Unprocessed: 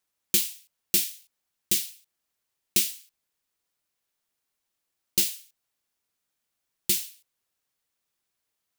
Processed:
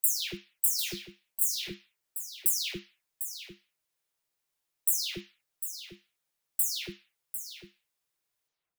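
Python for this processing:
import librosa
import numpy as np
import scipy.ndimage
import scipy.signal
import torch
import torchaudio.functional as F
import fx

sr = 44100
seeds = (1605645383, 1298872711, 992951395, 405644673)

y = fx.spec_delay(x, sr, highs='early', ms=301)
y = fx.peak_eq(y, sr, hz=230.0, db=-11.0, octaves=0.28)
y = y + 10.0 ** (-10.0 / 20.0) * np.pad(y, (int(749 * sr / 1000.0), 0))[:len(y)]
y = y * 10.0 ** (-2.0 / 20.0)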